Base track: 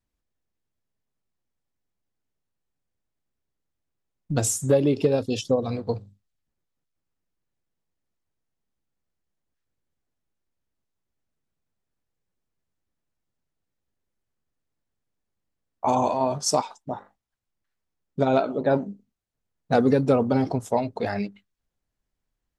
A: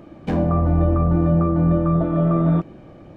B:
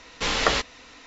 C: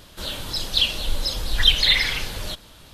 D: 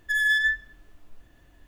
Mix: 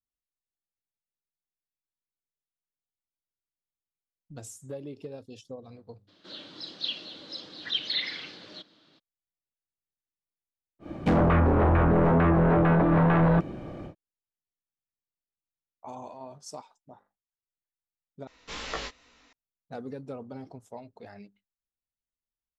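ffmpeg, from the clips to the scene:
-filter_complex "[0:a]volume=-19.5dB[a];[3:a]highpass=f=160:w=0.5412,highpass=f=160:w=1.3066,equalizer=f=310:t=q:w=4:g=9,equalizer=f=910:t=q:w=4:g=-5,equalizer=f=2.5k:t=q:w=4:g=-3,equalizer=f=4.2k:t=q:w=4:g=4,lowpass=f=4.9k:w=0.5412,lowpass=f=4.9k:w=1.3066[b];[1:a]aeval=exprs='0.447*sin(PI/2*3.16*val(0)/0.447)':c=same[c];[2:a]flanger=delay=16.5:depth=4.1:speed=2.4[d];[a]asplit=2[e][f];[e]atrim=end=18.274[g];[d]atrim=end=1.06,asetpts=PTS-STARTPTS,volume=-10dB[h];[f]atrim=start=19.326[i];[b]atrim=end=2.93,asetpts=PTS-STARTPTS,volume=-13dB,afade=t=in:d=0.02,afade=t=out:st=2.91:d=0.02,adelay=6070[j];[c]atrim=end=3.16,asetpts=PTS-STARTPTS,volume=-10.5dB,afade=t=in:d=0.1,afade=t=out:st=3.06:d=0.1,adelay=10790[k];[g][h]acrossfade=d=0.004:c1=hsin:c2=hsin[l];[l][i]acrossfade=d=0.004:c1=hsin:c2=hsin[m];[m][j][k]amix=inputs=3:normalize=0"

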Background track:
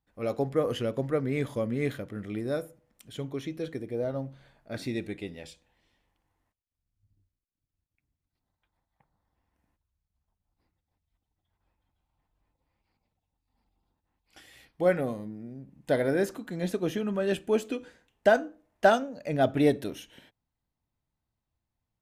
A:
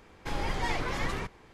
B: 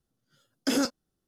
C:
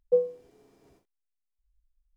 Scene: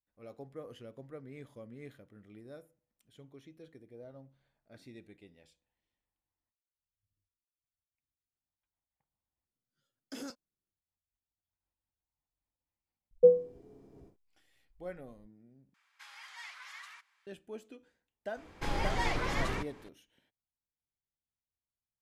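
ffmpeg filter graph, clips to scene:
-filter_complex "[1:a]asplit=2[a][b];[0:a]volume=-19dB[c];[3:a]tiltshelf=f=690:g=9[d];[a]highpass=f=1.2k:w=0.5412,highpass=f=1.2k:w=1.3066[e];[c]asplit=3[f][g][h];[f]atrim=end=9.454[i];[2:a]atrim=end=1.27,asetpts=PTS-STARTPTS,volume=-17.5dB[j];[g]atrim=start=10.716:end=15.744[k];[e]atrim=end=1.53,asetpts=PTS-STARTPTS,volume=-11.5dB[l];[h]atrim=start=17.266[m];[d]atrim=end=2.16,asetpts=PTS-STARTPTS,volume=-0.5dB,afade=t=in:d=0.004:c=hsin,afade=t=out:st=2.156:d=0.004:c=hsin,adelay=13110[n];[b]atrim=end=1.53,asetpts=PTS-STARTPTS,volume=-1dB,afade=t=in:d=0.004:c=hsin,afade=t=out:st=1.526:d=0.004:c=hsin,adelay=18360[o];[i][j]acrossfade=d=0.004:c1=hsin:c2=hsin[p];[p][k]acrossfade=d=0.004:c1=hsin:c2=hsin[q];[q][l]acrossfade=d=0.004:c1=hsin:c2=hsin[r];[r][m]acrossfade=d=0.004:c1=hsin:c2=hsin[s];[s][n][o]amix=inputs=3:normalize=0"

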